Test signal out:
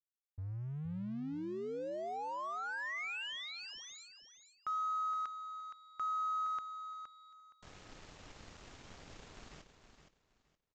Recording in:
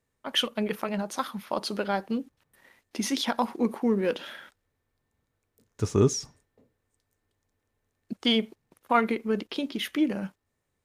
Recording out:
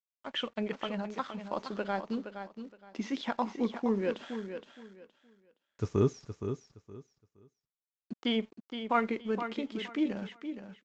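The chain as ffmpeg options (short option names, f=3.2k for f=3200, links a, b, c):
-filter_complex "[0:a]acrossover=split=3200[a][b];[b]acompressor=threshold=-48dB:ratio=4:attack=1:release=60[c];[a][c]amix=inputs=2:normalize=0,aresample=16000,aeval=exprs='sgn(val(0))*max(abs(val(0))-0.00251,0)':c=same,aresample=44100,aecho=1:1:468|936|1404:0.355|0.0816|0.0188,volume=-5dB"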